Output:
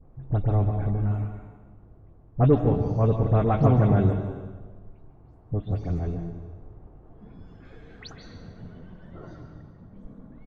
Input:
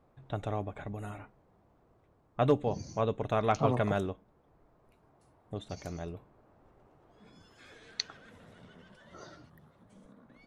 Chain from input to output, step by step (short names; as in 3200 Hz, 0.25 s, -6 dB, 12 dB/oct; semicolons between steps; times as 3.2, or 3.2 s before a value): spectral delay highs late, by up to 0.12 s; tilt -4 dB/oct; in parallel at -11.5 dB: soft clip -22 dBFS, distortion -9 dB; on the sum: air absorption 65 m; on a send: echo 0.144 s -13.5 dB; on the sum: plate-style reverb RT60 1.4 s, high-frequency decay 0.85×, pre-delay 0.12 s, DRR 7 dB